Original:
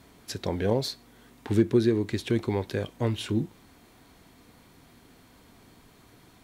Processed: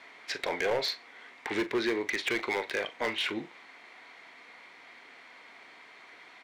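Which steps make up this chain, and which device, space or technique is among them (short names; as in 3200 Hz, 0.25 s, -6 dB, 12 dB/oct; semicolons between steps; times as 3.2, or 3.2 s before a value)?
megaphone (BPF 670–3800 Hz; bell 2100 Hz +11 dB 0.42 oct; hard clip -30 dBFS, distortion -10 dB; doubler 40 ms -13.5 dB); gain +6 dB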